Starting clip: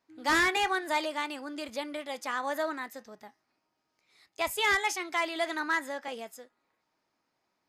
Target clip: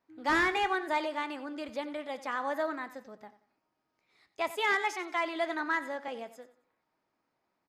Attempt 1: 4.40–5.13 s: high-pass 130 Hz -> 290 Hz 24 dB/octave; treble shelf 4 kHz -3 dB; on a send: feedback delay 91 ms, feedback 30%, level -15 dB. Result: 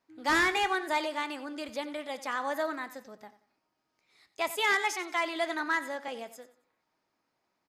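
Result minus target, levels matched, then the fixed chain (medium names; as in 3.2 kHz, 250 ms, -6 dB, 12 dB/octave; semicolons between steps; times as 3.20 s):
8 kHz band +6.5 dB
4.40–5.13 s: high-pass 130 Hz -> 290 Hz 24 dB/octave; treble shelf 4 kHz -13.5 dB; on a send: feedback delay 91 ms, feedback 30%, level -15 dB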